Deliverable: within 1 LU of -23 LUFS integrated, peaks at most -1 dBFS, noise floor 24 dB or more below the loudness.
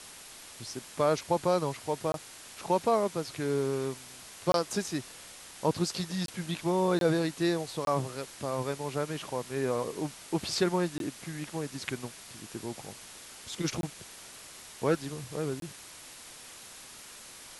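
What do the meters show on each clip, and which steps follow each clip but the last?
dropouts 8; longest dropout 22 ms; noise floor -49 dBFS; noise floor target -56 dBFS; loudness -32.0 LUFS; peak level -13.0 dBFS; loudness target -23.0 LUFS
-> interpolate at 2.12/4.52/6.26/6.99/7.85/10.98/13.81/15.60 s, 22 ms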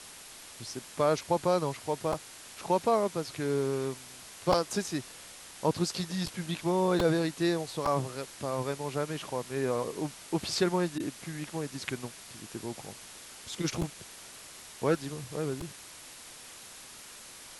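dropouts 0; noise floor -49 dBFS; noise floor target -56 dBFS
-> noise reduction 7 dB, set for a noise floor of -49 dBFS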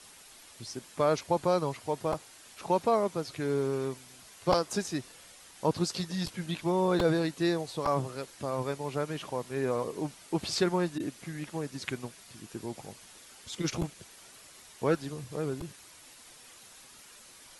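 noise floor -54 dBFS; noise floor target -56 dBFS
-> noise reduction 6 dB, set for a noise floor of -54 dBFS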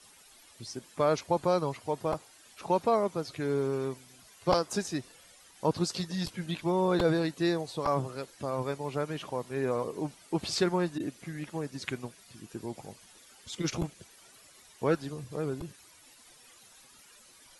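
noise floor -57 dBFS; loudness -32.0 LUFS; peak level -12.0 dBFS; loudness target -23.0 LUFS
-> trim +9 dB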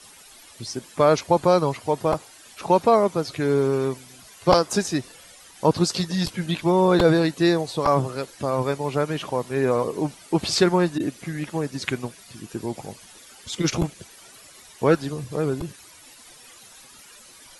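loudness -23.0 LUFS; peak level -3.0 dBFS; noise floor -48 dBFS

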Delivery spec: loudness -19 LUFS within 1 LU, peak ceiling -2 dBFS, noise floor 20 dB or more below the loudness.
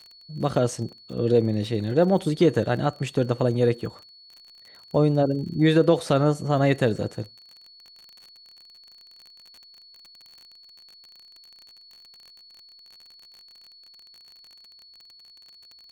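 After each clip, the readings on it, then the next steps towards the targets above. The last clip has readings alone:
tick rate 38 per s; steady tone 4.4 kHz; tone level -48 dBFS; loudness -23.0 LUFS; peak level -7.0 dBFS; loudness target -19.0 LUFS
-> de-click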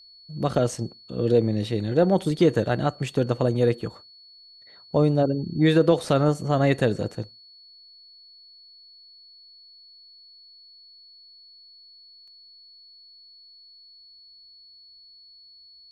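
tick rate 0.063 per s; steady tone 4.4 kHz; tone level -48 dBFS
-> band-stop 4.4 kHz, Q 30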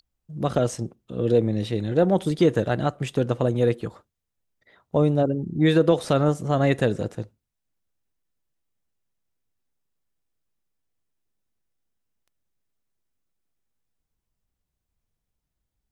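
steady tone not found; loudness -23.0 LUFS; peak level -7.0 dBFS; loudness target -19.0 LUFS
-> trim +4 dB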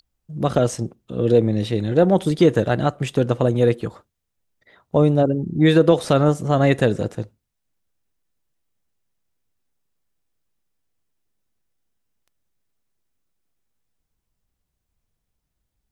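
loudness -19.0 LUFS; peak level -3.0 dBFS; noise floor -78 dBFS

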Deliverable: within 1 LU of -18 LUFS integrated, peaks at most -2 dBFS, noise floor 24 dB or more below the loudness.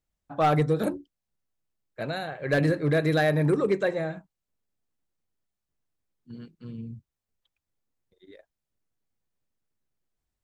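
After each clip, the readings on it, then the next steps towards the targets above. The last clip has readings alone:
clipped samples 0.2%; clipping level -16.0 dBFS; loudness -25.5 LUFS; peak level -16.0 dBFS; loudness target -18.0 LUFS
-> clip repair -16 dBFS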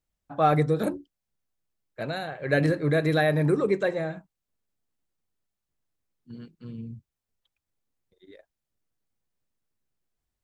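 clipped samples 0.0%; loudness -25.0 LUFS; peak level -9.5 dBFS; loudness target -18.0 LUFS
-> trim +7 dB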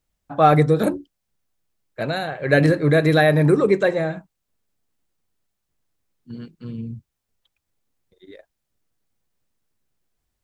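loudness -18.0 LUFS; peak level -2.0 dBFS; noise floor -79 dBFS

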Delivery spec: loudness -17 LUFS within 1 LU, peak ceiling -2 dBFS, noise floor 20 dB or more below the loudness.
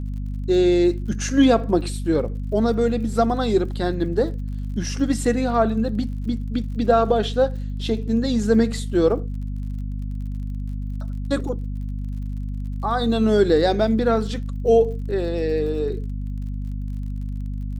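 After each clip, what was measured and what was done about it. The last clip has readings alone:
tick rate 45 per s; hum 50 Hz; highest harmonic 250 Hz; hum level -25 dBFS; loudness -22.5 LUFS; peak level -5.0 dBFS; loudness target -17.0 LUFS
-> de-click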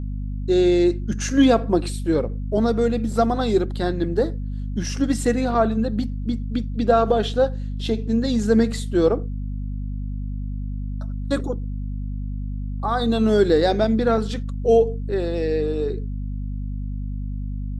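tick rate 0 per s; hum 50 Hz; highest harmonic 250 Hz; hum level -25 dBFS
-> de-hum 50 Hz, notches 5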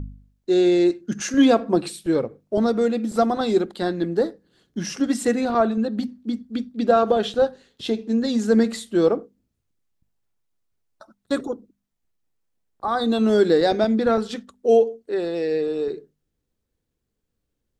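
hum not found; loudness -21.5 LUFS; peak level -5.5 dBFS; loudness target -17.0 LUFS
-> trim +4.5 dB; peak limiter -2 dBFS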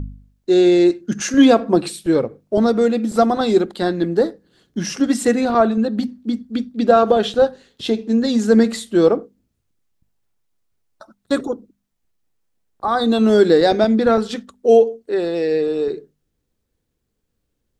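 loudness -17.0 LUFS; peak level -2.0 dBFS; noise floor -73 dBFS

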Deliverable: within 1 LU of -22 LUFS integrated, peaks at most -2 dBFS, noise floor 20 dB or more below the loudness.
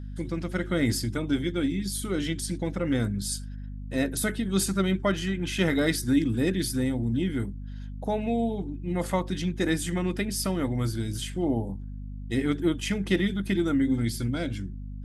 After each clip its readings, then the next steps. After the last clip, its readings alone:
hum 50 Hz; highest harmonic 250 Hz; hum level -34 dBFS; loudness -28.0 LUFS; peak level -11.0 dBFS; loudness target -22.0 LUFS
-> de-hum 50 Hz, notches 5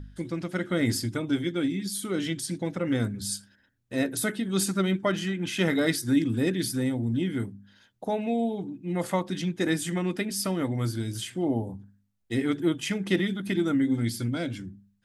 hum not found; loudness -28.5 LUFS; peak level -11.5 dBFS; loudness target -22.0 LUFS
-> trim +6.5 dB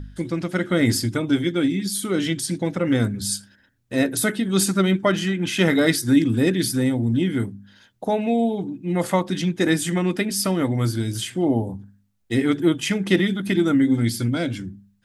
loudness -22.0 LUFS; peak level -5.0 dBFS; noise floor -61 dBFS

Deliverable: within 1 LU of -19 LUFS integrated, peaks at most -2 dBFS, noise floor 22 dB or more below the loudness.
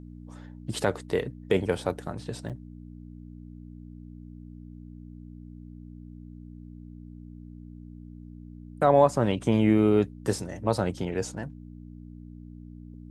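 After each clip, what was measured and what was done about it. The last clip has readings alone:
dropouts 1; longest dropout 7.6 ms; hum 60 Hz; highest harmonic 300 Hz; hum level -41 dBFS; loudness -26.5 LUFS; peak level -7.5 dBFS; loudness target -19.0 LUFS
-> interpolate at 2.49 s, 7.6 ms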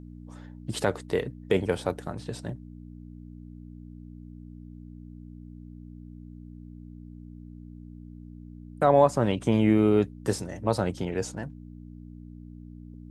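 dropouts 0; hum 60 Hz; highest harmonic 300 Hz; hum level -41 dBFS
-> de-hum 60 Hz, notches 5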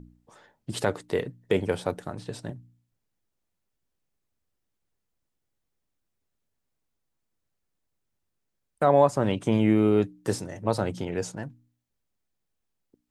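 hum not found; loudness -26.0 LUFS; peak level -7.5 dBFS; loudness target -19.0 LUFS
-> trim +7 dB; peak limiter -2 dBFS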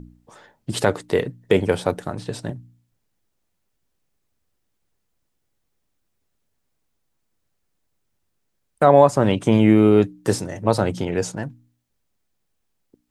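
loudness -19.0 LUFS; peak level -2.0 dBFS; noise floor -73 dBFS

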